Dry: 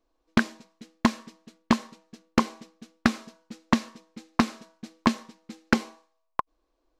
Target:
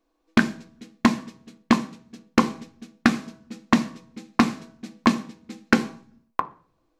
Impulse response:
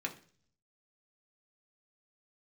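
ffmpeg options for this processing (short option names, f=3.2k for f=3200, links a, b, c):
-filter_complex "[0:a]asplit=2[a][b];[1:a]atrim=start_sample=2205,lowshelf=f=340:g=5[c];[b][c]afir=irnorm=-1:irlink=0,volume=-3.5dB[d];[a][d]amix=inputs=2:normalize=0,volume=-1dB"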